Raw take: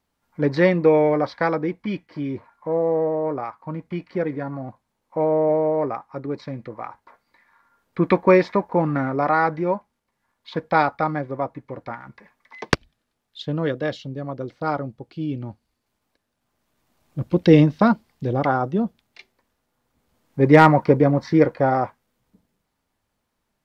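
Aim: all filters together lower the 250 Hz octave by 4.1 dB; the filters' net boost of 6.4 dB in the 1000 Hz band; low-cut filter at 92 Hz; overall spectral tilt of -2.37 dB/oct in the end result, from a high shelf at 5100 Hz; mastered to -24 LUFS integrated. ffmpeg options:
-af "highpass=92,equalizer=f=250:t=o:g=-6.5,equalizer=f=1k:t=o:g=9,highshelf=f=5.1k:g=-6.5,volume=-5dB"

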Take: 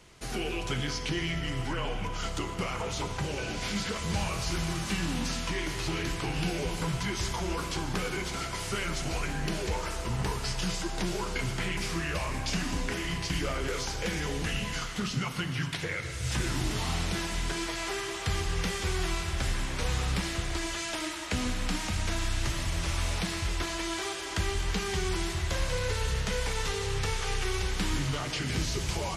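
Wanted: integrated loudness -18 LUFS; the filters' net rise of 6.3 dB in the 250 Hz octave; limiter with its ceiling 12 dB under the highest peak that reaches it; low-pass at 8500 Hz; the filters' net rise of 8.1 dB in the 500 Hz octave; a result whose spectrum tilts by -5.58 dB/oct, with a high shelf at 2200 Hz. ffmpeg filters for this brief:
-af "lowpass=8.5k,equalizer=f=250:t=o:g=6.5,equalizer=f=500:t=o:g=8.5,highshelf=f=2.2k:g=-8.5,volume=17dB,alimiter=limit=-9.5dB:level=0:latency=1"

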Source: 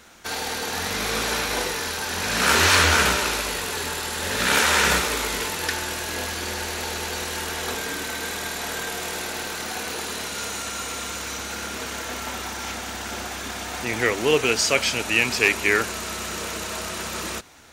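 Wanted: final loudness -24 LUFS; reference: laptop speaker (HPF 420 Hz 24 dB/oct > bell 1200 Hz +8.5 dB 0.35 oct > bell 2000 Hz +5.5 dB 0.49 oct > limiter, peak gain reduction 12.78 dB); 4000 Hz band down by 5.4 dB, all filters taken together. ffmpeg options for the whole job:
-af "highpass=f=420:w=0.5412,highpass=f=420:w=1.3066,equalizer=f=1.2k:t=o:w=0.35:g=8.5,equalizer=f=2k:t=o:w=0.49:g=5.5,equalizer=f=4k:t=o:g=-8,volume=3dB,alimiter=limit=-13dB:level=0:latency=1"

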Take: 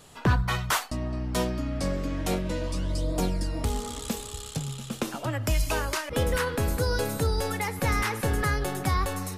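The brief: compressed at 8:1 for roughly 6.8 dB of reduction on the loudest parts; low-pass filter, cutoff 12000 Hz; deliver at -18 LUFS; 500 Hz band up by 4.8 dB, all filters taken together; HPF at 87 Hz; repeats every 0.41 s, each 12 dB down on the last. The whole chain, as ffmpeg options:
-af "highpass=87,lowpass=12k,equalizer=f=500:t=o:g=5.5,acompressor=threshold=-26dB:ratio=8,aecho=1:1:410|820|1230:0.251|0.0628|0.0157,volume=13.5dB"

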